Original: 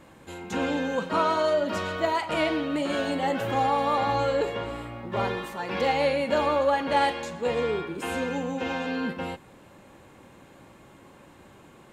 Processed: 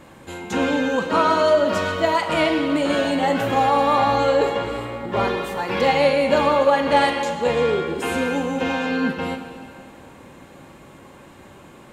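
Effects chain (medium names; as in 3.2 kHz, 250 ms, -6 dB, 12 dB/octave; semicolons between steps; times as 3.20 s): plate-style reverb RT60 2.4 s, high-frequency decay 0.9×, DRR 7 dB; trim +6 dB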